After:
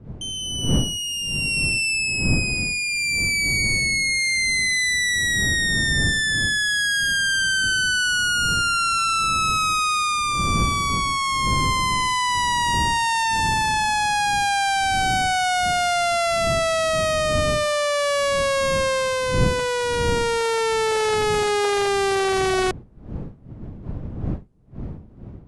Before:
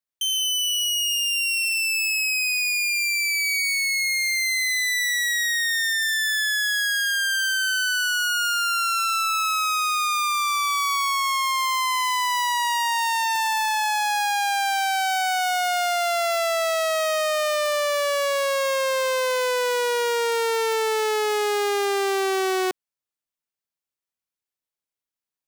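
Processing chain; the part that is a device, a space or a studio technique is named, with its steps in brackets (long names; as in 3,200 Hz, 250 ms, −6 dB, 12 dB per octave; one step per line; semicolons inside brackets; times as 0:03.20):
smartphone video outdoors (wind on the microphone 170 Hz −30 dBFS; automatic gain control gain up to 9 dB; level −6.5 dB; AAC 64 kbit/s 24,000 Hz)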